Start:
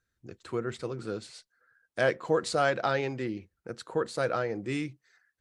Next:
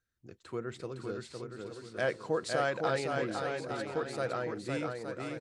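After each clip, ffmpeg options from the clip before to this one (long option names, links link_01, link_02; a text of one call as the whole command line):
ffmpeg -i in.wav -af "aecho=1:1:510|867|1117|1292|1414:0.631|0.398|0.251|0.158|0.1,volume=-5.5dB" out.wav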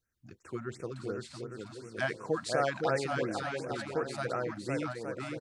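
ffmpeg -i in.wav -af "afftfilt=real='re*(1-between(b*sr/1024,390*pow(4000/390,0.5+0.5*sin(2*PI*2.8*pts/sr))/1.41,390*pow(4000/390,0.5+0.5*sin(2*PI*2.8*pts/sr))*1.41))':imag='im*(1-between(b*sr/1024,390*pow(4000/390,0.5+0.5*sin(2*PI*2.8*pts/sr))/1.41,390*pow(4000/390,0.5+0.5*sin(2*PI*2.8*pts/sr))*1.41))':win_size=1024:overlap=0.75,volume=1.5dB" out.wav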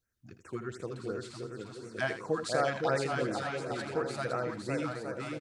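ffmpeg -i in.wav -af "aecho=1:1:80|739:0.316|0.133" out.wav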